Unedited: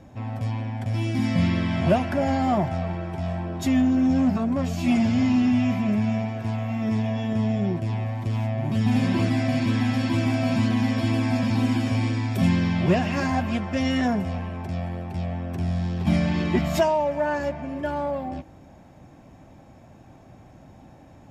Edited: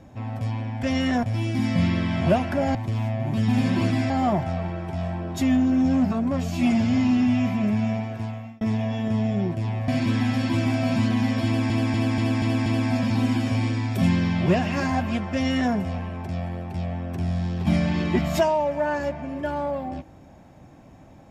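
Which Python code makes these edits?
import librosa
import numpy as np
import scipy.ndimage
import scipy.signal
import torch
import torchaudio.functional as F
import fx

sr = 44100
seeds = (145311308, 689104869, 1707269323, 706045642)

y = fx.edit(x, sr, fx.fade_out_span(start_s=6.14, length_s=0.72, curve='qsin'),
    fx.move(start_s=8.13, length_s=1.35, to_s=2.35),
    fx.stutter(start_s=11.06, slice_s=0.24, count=6),
    fx.duplicate(start_s=13.73, length_s=0.4, to_s=0.83), tone=tone)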